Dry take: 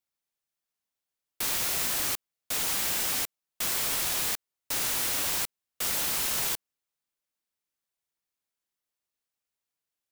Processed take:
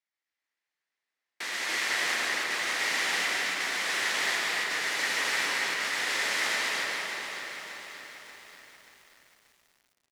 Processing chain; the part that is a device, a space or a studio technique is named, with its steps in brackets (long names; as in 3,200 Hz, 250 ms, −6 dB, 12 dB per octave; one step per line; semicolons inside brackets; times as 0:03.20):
station announcement (band-pass filter 320–4,800 Hz; parametric band 1,900 Hz +12 dB 0.48 octaves; loudspeakers that aren't time-aligned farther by 44 metres −6 dB, 98 metres −1 dB; convolution reverb RT60 3.8 s, pre-delay 107 ms, DRR −1.5 dB)
high-shelf EQ 5,600 Hz +4 dB
feedback echo at a low word length 583 ms, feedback 55%, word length 8 bits, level −9 dB
level −4 dB